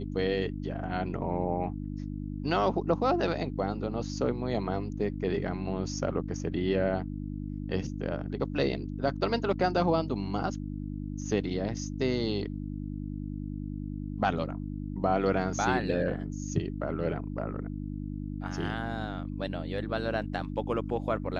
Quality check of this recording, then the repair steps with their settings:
hum 50 Hz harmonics 6 -36 dBFS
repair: de-hum 50 Hz, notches 6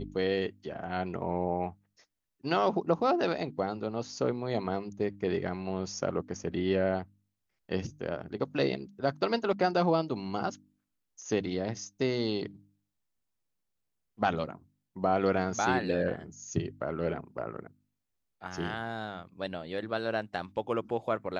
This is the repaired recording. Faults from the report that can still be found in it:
nothing left

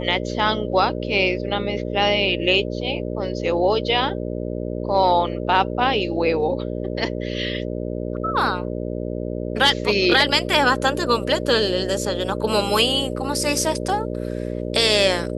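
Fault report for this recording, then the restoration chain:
buzz 60 Hz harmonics 10 -27 dBFS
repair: de-hum 60 Hz, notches 10

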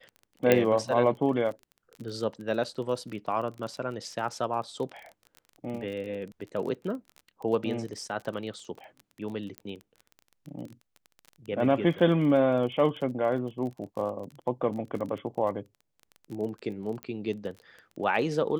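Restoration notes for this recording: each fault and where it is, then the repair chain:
crackle 26 per s -36 dBFS
0.52 s: pop -8 dBFS
9.58 s: pop -22 dBFS
17.03 s: pop -22 dBFS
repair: de-click

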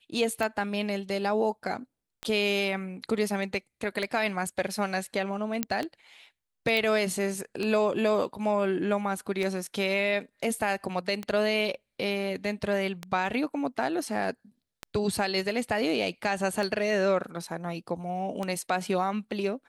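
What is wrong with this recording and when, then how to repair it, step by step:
tick 33 1/3 rpm -17 dBFS
5.63 s: pop -10 dBFS
6.77 s: pop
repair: de-click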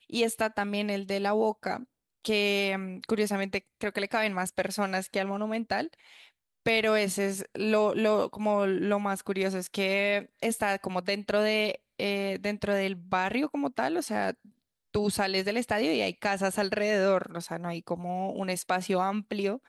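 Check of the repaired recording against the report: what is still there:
nothing left

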